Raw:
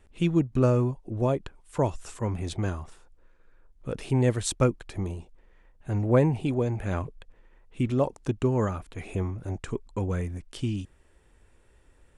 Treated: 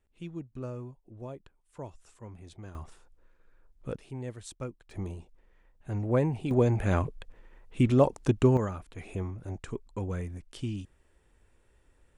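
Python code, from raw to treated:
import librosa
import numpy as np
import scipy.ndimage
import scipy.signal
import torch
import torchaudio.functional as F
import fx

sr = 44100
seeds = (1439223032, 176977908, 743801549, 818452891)

y = fx.gain(x, sr, db=fx.steps((0.0, -16.5), (2.75, -3.5), (3.96, -15.5), (4.91, -5.0), (6.51, 3.0), (8.57, -5.0)))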